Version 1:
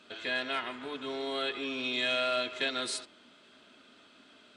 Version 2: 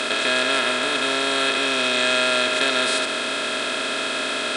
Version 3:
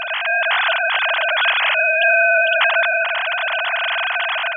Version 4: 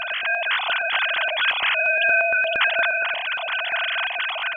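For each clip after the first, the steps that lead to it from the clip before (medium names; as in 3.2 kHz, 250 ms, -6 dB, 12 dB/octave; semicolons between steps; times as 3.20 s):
spectral levelling over time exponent 0.2; trim +5 dB
formants replaced by sine waves; level rider gain up to 5 dB
step-sequenced notch 8.6 Hz 380–1700 Hz; trim -2.5 dB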